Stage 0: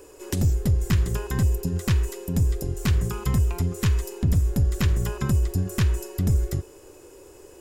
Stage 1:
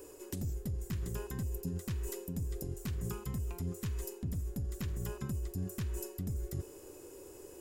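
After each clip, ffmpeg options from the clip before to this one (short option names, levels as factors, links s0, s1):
-af "highshelf=f=8400:g=10.5,areverse,acompressor=threshold=0.0316:ratio=5,areverse,equalizer=f=240:w=0.56:g=5.5,volume=0.422"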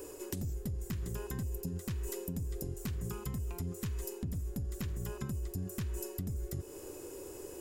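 -af "acompressor=threshold=0.01:ratio=4,volume=1.78"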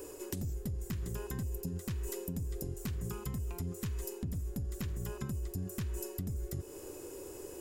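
-af anull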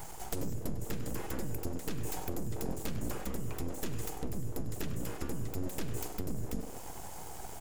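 -filter_complex "[0:a]flanger=delay=4.1:depth=3.5:regen=84:speed=0.57:shape=sinusoidal,asplit=2[s0][s1];[s1]adelay=99,lowpass=f=4900:p=1,volume=0.282,asplit=2[s2][s3];[s3]adelay=99,lowpass=f=4900:p=1,volume=0.49,asplit=2[s4][s5];[s5]adelay=99,lowpass=f=4900:p=1,volume=0.49,asplit=2[s6][s7];[s7]adelay=99,lowpass=f=4900:p=1,volume=0.49,asplit=2[s8][s9];[s9]adelay=99,lowpass=f=4900:p=1,volume=0.49[s10];[s0][s2][s4][s6][s8][s10]amix=inputs=6:normalize=0,aeval=exprs='abs(val(0))':c=same,volume=2.66"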